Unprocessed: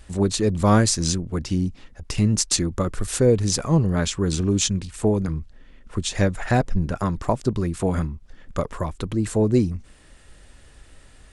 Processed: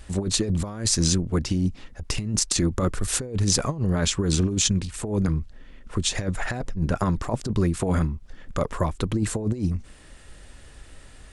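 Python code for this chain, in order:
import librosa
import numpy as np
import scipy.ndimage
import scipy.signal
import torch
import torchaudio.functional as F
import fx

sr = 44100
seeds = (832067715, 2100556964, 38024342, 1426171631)

y = fx.over_compress(x, sr, threshold_db=-22.0, ratio=-0.5)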